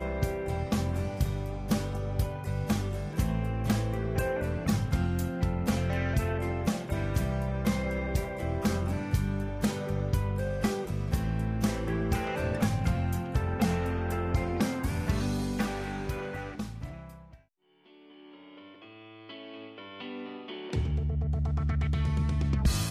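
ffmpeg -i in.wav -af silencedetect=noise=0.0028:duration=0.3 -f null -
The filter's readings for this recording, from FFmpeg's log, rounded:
silence_start: 17.40
silence_end: 17.86 | silence_duration: 0.46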